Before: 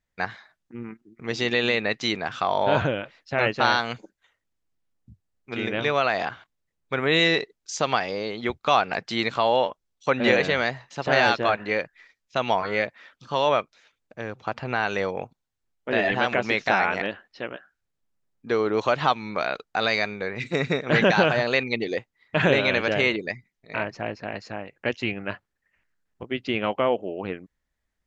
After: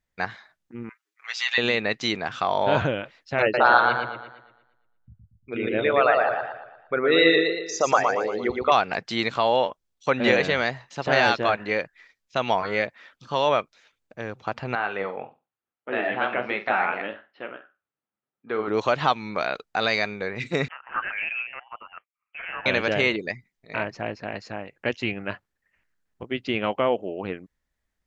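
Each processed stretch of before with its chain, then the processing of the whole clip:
0:00.89–0:01.58: high-pass filter 1,100 Hz 24 dB per octave + comb filter 7.2 ms, depth 74%
0:03.42–0:08.72: spectral envelope exaggerated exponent 2 + parametric band 1,200 Hz +3.5 dB 2.1 octaves + feedback echo with a swinging delay time 116 ms, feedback 45%, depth 62 cents, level −3.5 dB
0:14.75–0:18.68: flanger 1.1 Hz, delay 4.8 ms, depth 9.7 ms, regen +67% + loudspeaker in its box 150–3,200 Hz, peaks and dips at 160 Hz −7 dB, 770 Hz +3 dB, 1,300 Hz +6 dB + flutter between parallel walls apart 8.1 metres, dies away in 0.25 s
0:20.68–0:22.66: transient designer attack −11 dB, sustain −7 dB + LFO wah 1.1 Hz 730–2,000 Hz, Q 3.4 + voice inversion scrambler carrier 3,200 Hz
whole clip: no processing

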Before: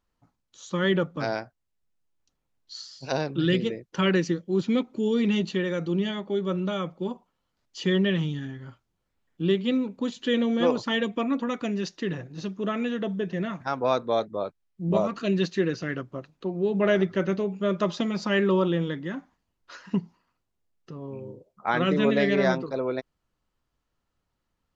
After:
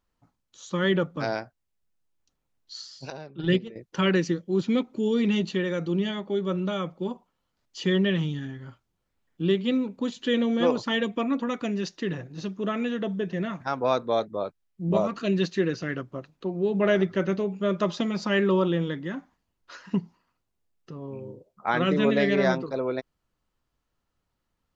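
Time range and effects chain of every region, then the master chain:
0:03.10–0:03.76: noise gate −23 dBFS, range −13 dB + high-shelf EQ 3,900 Hz −5.5 dB + comb filter 5.1 ms, depth 34%
whole clip: no processing

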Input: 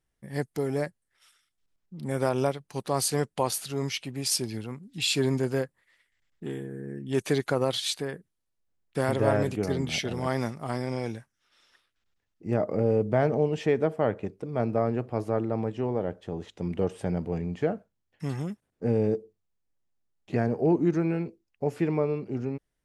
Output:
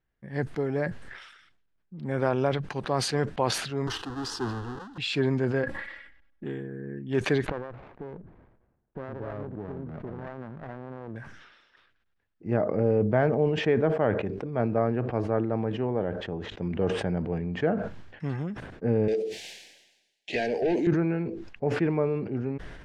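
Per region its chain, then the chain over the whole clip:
0:03.87–0:04.98: each half-wave held at its own peak + phaser with its sweep stopped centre 610 Hz, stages 6
0:05.63–0:06.44: notch filter 6,800 Hz, Q 11 + comb filter 3.6 ms, depth 95% + one half of a high-frequency compander decoder only
0:07.48–0:11.16: Butterworth low-pass 1,300 Hz 48 dB per octave + downward compressor 4 to 1, threshold −33 dBFS + windowed peak hold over 17 samples
0:19.08–0:20.87: spectral tilt +4.5 dB per octave + mid-hump overdrive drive 21 dB, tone 7,200 Hz, clips at −16 dBFS + Butterworth band-reject 1,200 Hz, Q 0.84
whole clip: low-pass filter 3,000 Hz 12 dB per octave; parametric band 1,600 Hz +5.5 dB 0.22 octaves; level that may fall only so fast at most 53 dB per second

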